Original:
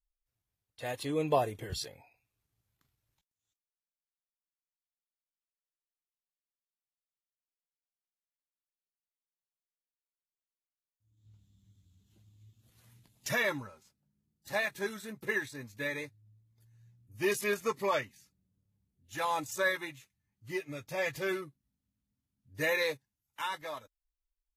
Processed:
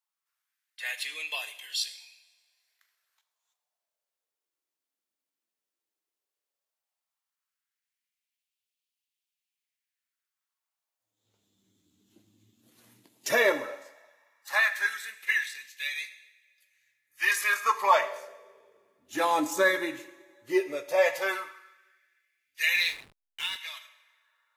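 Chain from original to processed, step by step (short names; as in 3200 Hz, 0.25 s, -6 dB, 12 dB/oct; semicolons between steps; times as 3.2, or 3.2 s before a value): two-slope reverb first 0.91 s, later 2.5 s, from -19 dB, DRR 9 dB; LFO high-pass sine 0.14 Hz 270–2900 Hz; 22.74–23.56 backlash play -41.5 dBFS; gain +5 dB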